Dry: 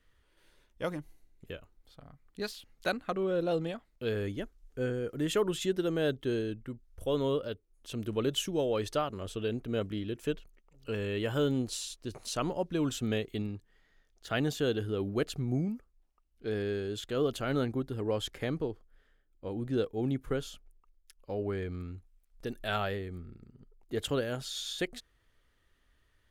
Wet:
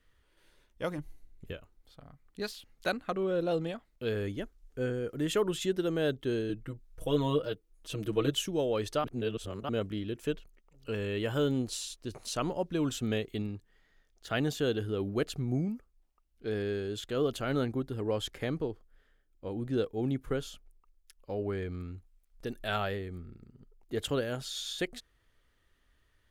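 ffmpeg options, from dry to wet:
-filter_complex "[0:a]asettb=1/sr,asplit=3[a][b][c];[a]atrim=end=0.984[d];[b]atrim=start=0.98:end=1.53,asetpts=PTS-STARTPTS,afade=t=in:d=0.004:c=qsin,afade=t=out:st=0.546:d=0.004:c=qsin,lowshelf=f=130:g=8.5[e];[c]atrim=start=1.526[f];[d][e]acrossfade=d=0.004:c1=hsin:c2=qsin[g];[g][f]acrossfade=d=0.004:c1=qsin:c2=hsin,asettb=1/sr,asplit=3[h][i][j];[h]atrim=end=6.494[k];[i]atrim=start=6.49:end=8.31,asetpts=PTS-STARTPTS,afade=t=in:d=0.004:c=qsin,afade=t=out:st=1.816:d=0.004:c=qsin,aecho=1:1:6.3:0.91,atrim=end_sample=80262[l];[j]atrim=start=8.306[m];[k][l]acrossfade=d=0.004:c1=hsin:c2=qsin[n];[n][m]acrossfade=d=0.004:c1=qsin:c2=hsin,asplit=3[o][p][q];[o]atrim=end=9.042[r];[p]atrim=start=9.038:end=9.692,asetpts=PTS-STARTPTS,areverse[s];[q]atrim=start=9.688[t];[r][s]acrossfade=d=0.004:c1=hsin:c2=hsin[u];[u][t]acrossfade=d=0.004:c1=hsin:c2=hsin"

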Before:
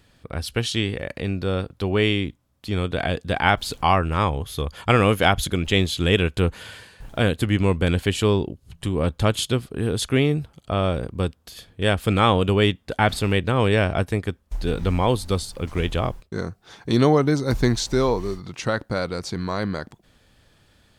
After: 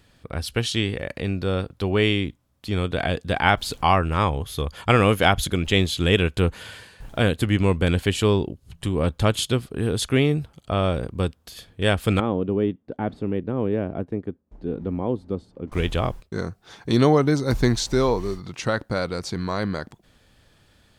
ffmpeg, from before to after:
-filter_complex "[0:a]asettb=1/sr,asplit=3[a][b][c];[a]atrim=end=12.204[d];[b]atrim=start=12.2:end=15.72,asetpts=PTS-STARTPTS,afade=t=in:d=0.004:c=qsin,afade=t=out:st=3.516:d=0.004:c=qsin,bandpass=f=280:t=q:w=1.2[e];[c]atrim=start=15.716[f];[d][e]acrossfade=d=0.004:c1=hsin:c2=qsin[g];[g][f]acrossfade=d=0.004:c1=qsin:c2=hsin"

